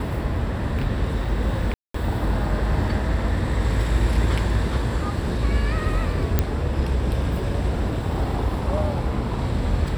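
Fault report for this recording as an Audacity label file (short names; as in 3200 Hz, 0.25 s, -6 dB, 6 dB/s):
1.740000	1.940000	gap 0.204 s
6.390000	6.390000	pop -6 dBFS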